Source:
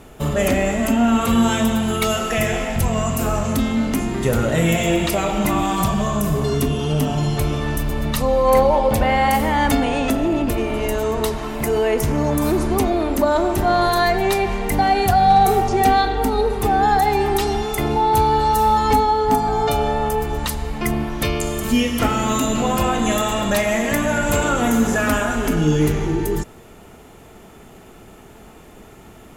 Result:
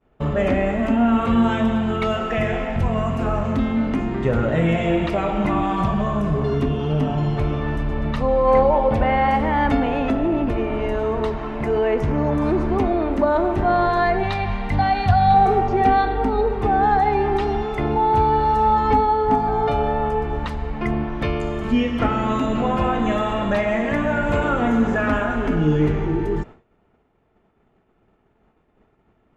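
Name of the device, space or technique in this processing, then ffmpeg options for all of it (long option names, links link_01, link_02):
hearing-loss simulation: -filter_complex "[0:a]asettb=1/sr,asplit=3[link_01][link_02][link_03];[link_01]atrim=end=14.234[link_04];[link_02]atrim=start=14.23:end=15.34,asetpts=PTS-STARTPTS,afade=type=in:duration=0.004:curve=qsin,afade=type=out:start_time=1.106:duration=0.004:curve=qsin,equalizer=frequency=100:width_type=o:width=0.67:gain=8,equalizer=frequency=400:width_type=o:width=0.67:gain=-12,equalizer=frequency=4000:width_type=o:width=0.67:gain=8[link_05];[link_03]atrim=start=15.336[link_06];[link_04][link_05]acrossfade=duration=0.004:curve1=hsin:curve2=qsin[link_07];[link_07][link_06]acrossfade=duration=0.004:curve1=qsin:curve2=hsin,lowpass=2200,agate=range=-33dB:threshold=-31dB:ratio=3:detection=peak,volume=-1dB"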